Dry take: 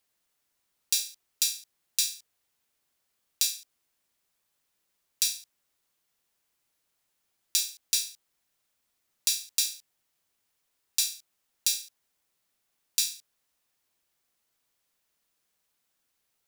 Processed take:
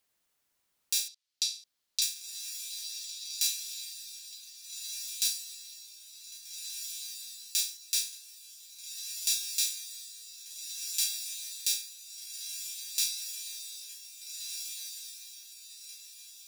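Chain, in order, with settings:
0:01.08–0:02.02: resonant band-pass 4,300 Hz, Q 1.8
brickwall limiter −10 dBFS, peak gain reduction 6 dB
on a send: feedback delay with all-pass diffusion 1,674 ms, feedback 40%, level −4.5 dB

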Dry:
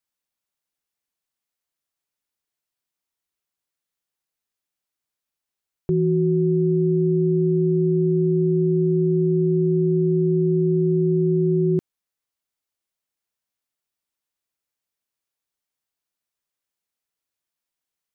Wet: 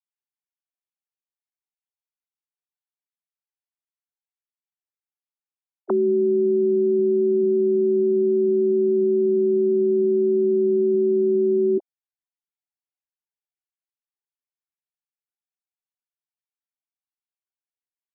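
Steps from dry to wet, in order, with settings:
three sine waves on the formant tracks

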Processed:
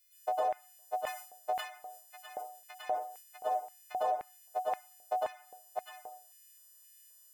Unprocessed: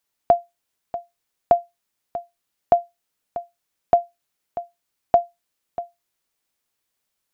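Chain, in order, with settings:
every partial snapped to a pitch grid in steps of 3 semitones
downward compressor 4 to 1, threshold −25 dBFS, peak gain reduction 11.5 dB
octave-band graphic EQ 125/250/500/1,000/2,000 Hz +4/−9/−4/−4/−3 dB
convolution reverb RT60 0.45 s, pre-delay 97 ms, DRR −9 dB
brickwall limiter −26 dBFS, peak gain reduction 10.5 dB
dynamic equaliser 1,100 Hz, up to +4 dB, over −49 dBFS, Q 1.3
auto-filter high-pass square 1.9 Hz 480–2,100 Hz
0:00.97–0:03.37: level that may fall only so fast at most 98 dB per second
level −3.5 dB

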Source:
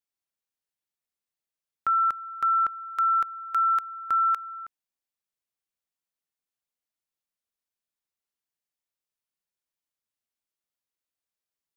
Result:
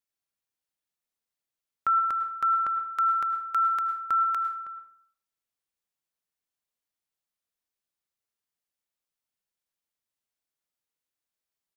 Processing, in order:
single-tap delay 79 ms −20.5 dB
dense smooth reverb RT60 0.64 s, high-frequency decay 0.65×, pre-delay 90 ms, DRR 8 dB

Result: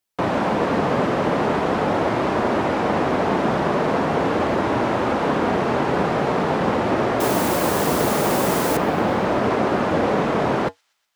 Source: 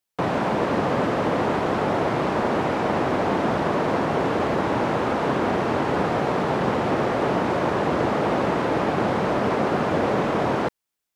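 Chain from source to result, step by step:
flanger 0.42 Hz, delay 2.8 ms, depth 2.5 ms, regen −72%
0:07.20–0:08.77: bit-depth reduction 6 bits, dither triangular
on a send: delay with a high-pass on its return 122 ms, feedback 64%, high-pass 4,800 Hz, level −21.5 dB
on the sum: level +6.5 dB

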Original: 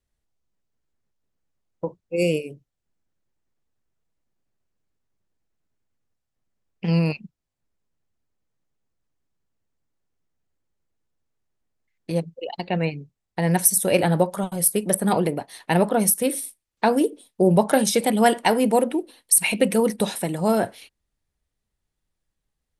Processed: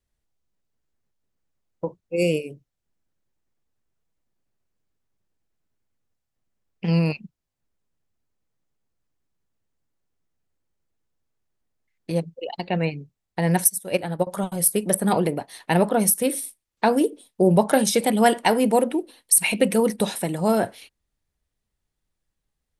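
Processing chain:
0:13.64–0:14.27: expander for the loud parts 2.5 to 1, over −26 dBFS

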